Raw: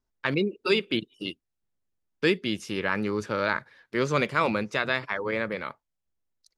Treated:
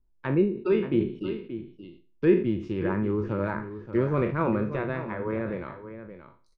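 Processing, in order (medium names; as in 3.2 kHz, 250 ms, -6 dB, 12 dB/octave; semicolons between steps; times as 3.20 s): spectral sustain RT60 0.38 s; low-pass that closes with the level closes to 2.1 kHz, closed at -24 dBFS; tilt EQ -4 dB/octave; small resonant body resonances 350/970/2500 Hz, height 9 dB, ringing for 90 ms; 2.41–4.47 s: phaser 2 Hz, delay 3 ms, feedback 24%; delay 578 ms -11.5 dB; decay stretcher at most 120 dB/s; trim -7 dB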